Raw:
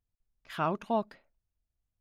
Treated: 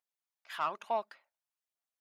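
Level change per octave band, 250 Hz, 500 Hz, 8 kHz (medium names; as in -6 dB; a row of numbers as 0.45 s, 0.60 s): -19.5 dB, -5.0 dB, no reading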